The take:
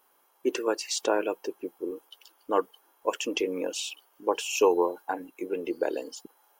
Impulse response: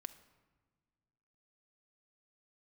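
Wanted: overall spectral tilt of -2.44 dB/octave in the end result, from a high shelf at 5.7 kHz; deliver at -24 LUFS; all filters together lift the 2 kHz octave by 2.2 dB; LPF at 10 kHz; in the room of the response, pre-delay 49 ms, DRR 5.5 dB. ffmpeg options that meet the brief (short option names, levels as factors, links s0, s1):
-filter_complex "[0:a]lowpass=10000,equalizer=f=2000:t=o:g=5,highshelf=f=5700:g=-8,asplit=2[s0][s1];[1:a]atrim=start_sample=2205,adelay=49[s2];[s1][s2]afir=irnorm=-1:irlink=0,volume=0.891[s3];[s0][s3]amix=inputs=2:normalize=0,volume=1.68"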